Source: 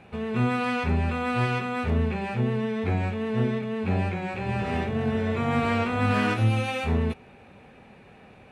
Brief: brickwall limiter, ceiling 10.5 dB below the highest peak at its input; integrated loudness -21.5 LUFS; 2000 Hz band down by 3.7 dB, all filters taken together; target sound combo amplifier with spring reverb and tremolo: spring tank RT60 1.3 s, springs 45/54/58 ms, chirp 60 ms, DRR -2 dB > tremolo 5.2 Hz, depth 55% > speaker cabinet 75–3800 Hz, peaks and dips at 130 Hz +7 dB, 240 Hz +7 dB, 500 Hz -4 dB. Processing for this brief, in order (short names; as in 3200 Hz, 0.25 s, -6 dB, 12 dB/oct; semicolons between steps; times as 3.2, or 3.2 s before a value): bell 2000 Hz -5 dB; limiter -22 dBFS; spring tank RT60 1.3 s, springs 45/54/58 ms, chirp 60 ms, DRR -2 dB; tremolo 5.2 Hz, depth 55%; speaker cabinet 75–3800 Hz, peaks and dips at 130 Hz +7 dB, 240 Hz +7 dB, 500 Hz -4 dB; gain +2.5 dB